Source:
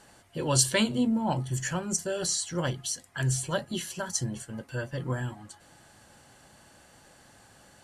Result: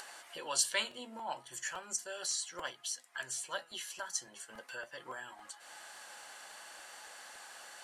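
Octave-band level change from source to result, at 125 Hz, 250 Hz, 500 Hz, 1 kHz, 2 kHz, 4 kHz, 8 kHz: −35.5, −26.0, −13.0, −6.5, −4.5, −5.5, −6.5 decibels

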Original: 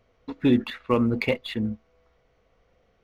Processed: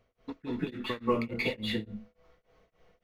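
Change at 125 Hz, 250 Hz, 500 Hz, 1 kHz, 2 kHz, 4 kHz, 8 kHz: −9.5 dB, −10.0 dB, −6.5 dB, −3.5 dB, −3.5 dB, −1.5 dB, can't be measured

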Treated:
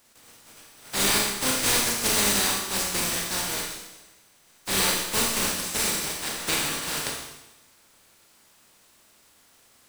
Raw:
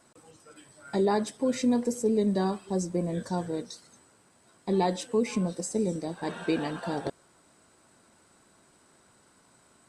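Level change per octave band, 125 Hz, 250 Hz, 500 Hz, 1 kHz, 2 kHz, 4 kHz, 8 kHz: −4.0, −6.5, −5.5, +2.5, +14.0, +18.0, +17.5 decibels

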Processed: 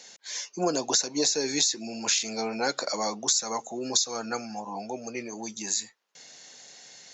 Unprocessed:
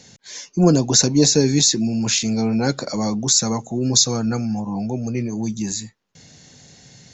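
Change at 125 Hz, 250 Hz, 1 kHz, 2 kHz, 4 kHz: −25.0, −15.5, −2.0, −2.5, −7.0 decibels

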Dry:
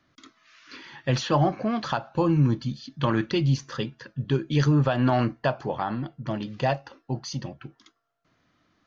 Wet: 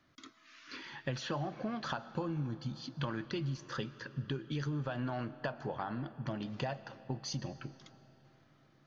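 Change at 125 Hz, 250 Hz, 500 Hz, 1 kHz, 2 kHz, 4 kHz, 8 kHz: −13.5 dB, −13.5 dB, −13.5 dB, −13.0 dB, −9.5 dB, −9.5 dB, can't be measured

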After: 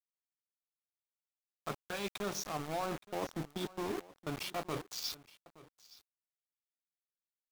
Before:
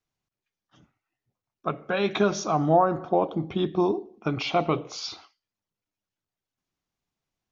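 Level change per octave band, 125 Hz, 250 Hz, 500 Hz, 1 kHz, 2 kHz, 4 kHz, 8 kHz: −14.5 dB, −15.0 dB, −15.5 dB, −15.5 dB, −10.5 dB, −7.5 dB, can't be measured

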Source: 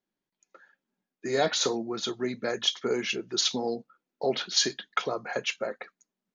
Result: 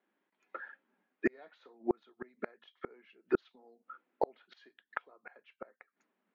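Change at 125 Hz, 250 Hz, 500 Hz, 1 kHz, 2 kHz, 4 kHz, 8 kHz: −14.0 dB, −6.0 dB, −9.5 dB, −9.5 dB, −10.0 dB, below −35 dB, below −40 dB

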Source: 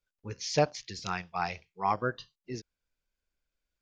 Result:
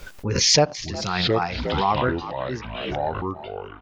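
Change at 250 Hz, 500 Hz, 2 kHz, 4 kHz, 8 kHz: +12.5, +10.0, +9.0, +17.5, +17.0 decibels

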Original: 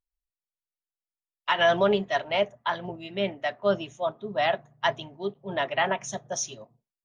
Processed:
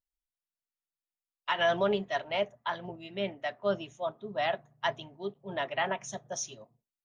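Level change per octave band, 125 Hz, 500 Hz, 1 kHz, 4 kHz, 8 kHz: −5.5 dB, −5.5 dB, −5.5 dB, −5.5 dB, can't be measured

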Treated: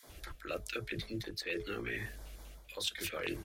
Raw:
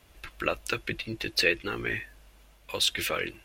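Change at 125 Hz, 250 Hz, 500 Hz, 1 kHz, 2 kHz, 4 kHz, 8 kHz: −4.0, −5.5, −8.0, −11.0, −11.0, −11.0, −9.5 decibels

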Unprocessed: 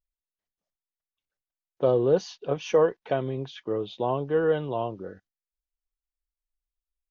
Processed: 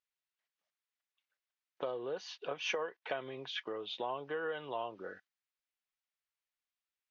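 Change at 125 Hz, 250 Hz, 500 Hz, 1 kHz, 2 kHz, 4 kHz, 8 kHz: −24.0 dB, −17.5 dB, −15.5 dB, −9.0 dB, −2.0 dB, 0.0 dB, can't be measured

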